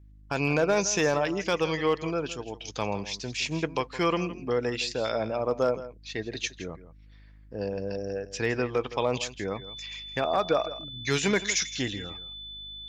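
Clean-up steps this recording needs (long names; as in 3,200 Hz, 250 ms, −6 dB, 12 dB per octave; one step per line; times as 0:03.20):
clipped peaks rebuilt −15 dBFS
hum removal 51.4 Hz, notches 6
notch filter 3,500 Hz, Q 30
echo removal 164 ms −15 dB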